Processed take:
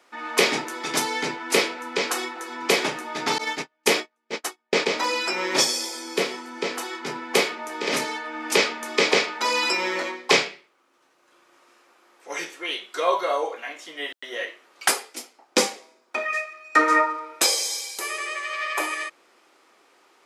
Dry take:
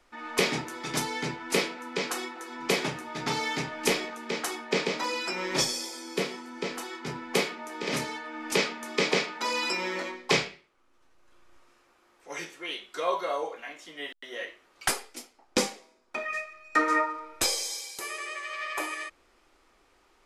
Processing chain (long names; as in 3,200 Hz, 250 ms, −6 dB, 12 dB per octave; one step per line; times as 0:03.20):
high-pass filter 290 Hz 12 dB per octave
0:03.38–0:04.86: noise gate −30 dBFS, range −42 dB
level +6.5 dB